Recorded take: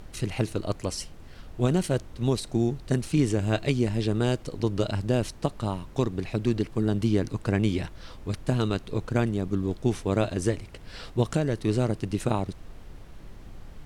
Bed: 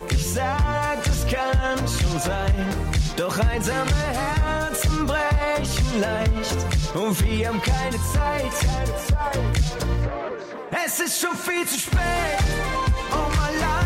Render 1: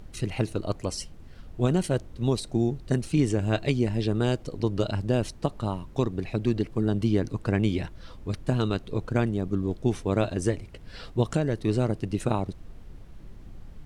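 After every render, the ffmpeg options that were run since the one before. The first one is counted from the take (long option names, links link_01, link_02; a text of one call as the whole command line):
ffmpeg -i in.wav -af "afftdn=noise_reduction=6:noise_floor=-46" out.wav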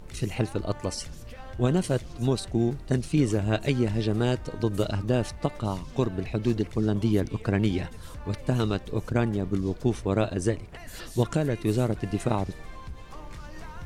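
ffmpeg -i in.wav -i bed.wav -filter_complex "[1:a]volume=-22dB[link_01];[0:a][link_01]amix=inputs=2:normalize=0" out.wav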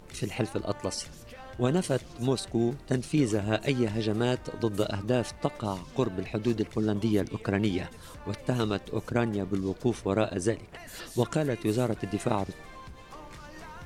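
ffmpeg -i in.wav -af "lowshelf=frequency=110:gain=-11" out.wav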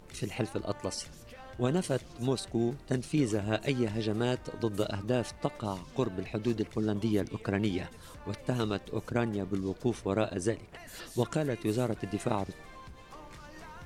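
ffmpeg -i in.wav -af "volume=-3dB" out.wav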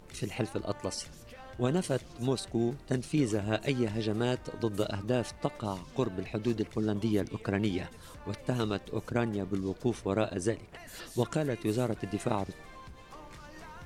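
ffmpeg -i in.wav -af anull out.wav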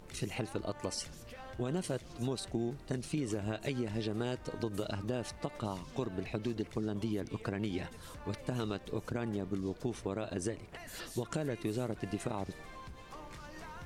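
ffmpeg -i in.wav -af "alimiter=limit=-20dB:level=0:latency=1:release=101,acompressor=threshold=-32dB:ratio=3" out.wav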